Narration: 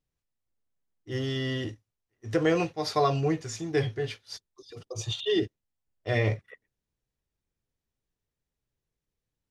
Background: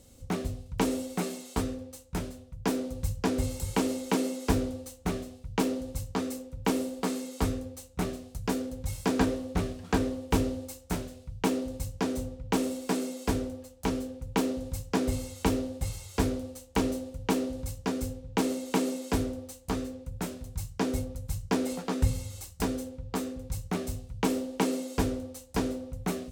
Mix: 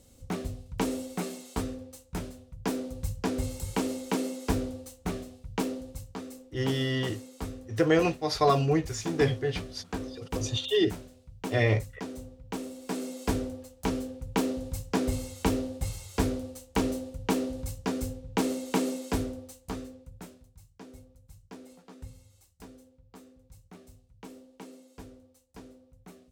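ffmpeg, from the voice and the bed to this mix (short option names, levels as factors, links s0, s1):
-filter_complex "[0:a]adelay=5450,volume=1.19[s0];[1:a]volume=2.11,afade=t=out:st=5.5:d=0.67:silence=0.473151,afade=t=in:st=12.74:d=0.52:silence=0.375837,afade=t=out:st=18.91:d=1.63:silence=0.112202[s1];[s0][s1]amix=inputs=2:normalize=0"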